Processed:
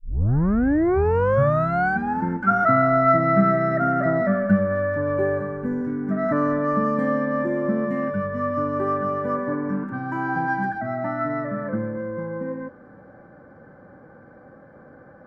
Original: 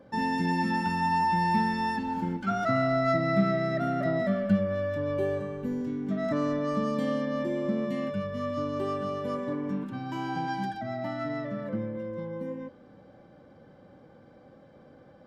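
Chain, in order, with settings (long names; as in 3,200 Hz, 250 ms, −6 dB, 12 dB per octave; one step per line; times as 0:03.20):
turntable start at the beginning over 2.24 s
high shelf with overshoot 2,300 Hz −13 dB, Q 3
level +5.5 dB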